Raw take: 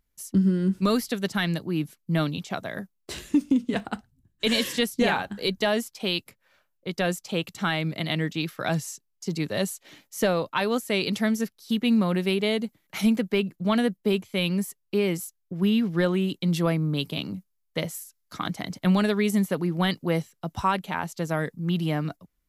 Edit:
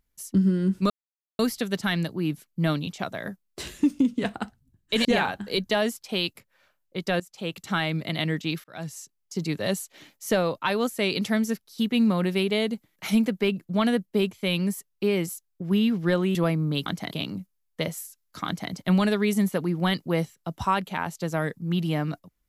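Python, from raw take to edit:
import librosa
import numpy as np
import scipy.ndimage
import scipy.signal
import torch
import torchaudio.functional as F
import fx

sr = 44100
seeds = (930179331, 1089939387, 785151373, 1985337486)

y = fx.edit(x, sr, fx.insert_silence(at_s=0.9, length_s=0.49),
    fx.cut(start_s=4.56, length_s=0.4),
    fx.fade_in_from(start_s=7.11, length_s=0.47, floor_db=-17.5),
    fx.fade_in_span(start_s=8.55, length_s=0.81, curve='qsin'),
    fx.cut(start_s=16.26, length_s=0.31),
    fx.duplicate(start_s=18.43, length_s=0.25, to_s=17.08), tone=tone)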